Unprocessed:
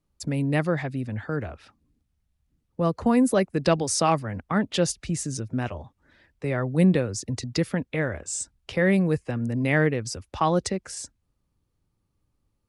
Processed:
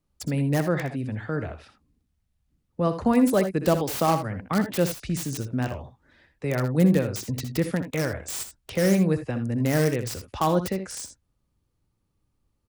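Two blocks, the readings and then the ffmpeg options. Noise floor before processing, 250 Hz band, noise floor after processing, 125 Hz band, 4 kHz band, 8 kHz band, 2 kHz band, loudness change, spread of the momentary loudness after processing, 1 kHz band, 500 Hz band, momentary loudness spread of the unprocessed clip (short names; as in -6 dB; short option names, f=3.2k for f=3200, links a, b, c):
-75 dBFS, +0.5 dB, -74 dBFS, +0.5 dB, -2.0 dB, -3.5 dB, -3.5 dB, 0.0 dB, 12 LU, -0.5 dB, +0.5 dB, 11 LU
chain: -filter_complex "[0:a]acrossover=split=1300[a][b];[b]aeval=exprs='(mod(22.4*val(0)+1,2)-1)/22.4':c=same[c];[a][c]amix=inputs=2:normalize=0,aecho=1:1:63|79:0.266|0.224"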